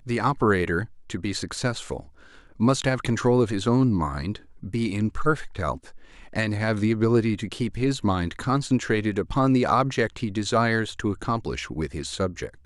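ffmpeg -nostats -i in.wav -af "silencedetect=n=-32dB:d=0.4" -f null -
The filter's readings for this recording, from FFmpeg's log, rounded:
silence_start: 2.00
silence_end: 2.60 | silence_duration: 0.60
silence_start: 5.77
silence_end: 6.33 | silence_duration: 0.56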